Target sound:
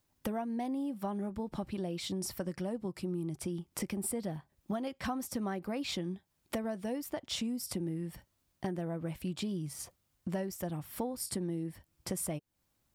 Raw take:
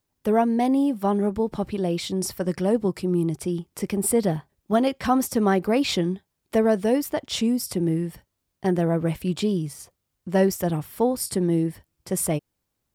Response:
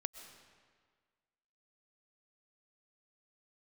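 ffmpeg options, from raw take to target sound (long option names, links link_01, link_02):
-af "equalizer=frequency=430:width=7.5:gain=-9,acompressor=threshold=-36dB:ratio=6,volume=1.5dB"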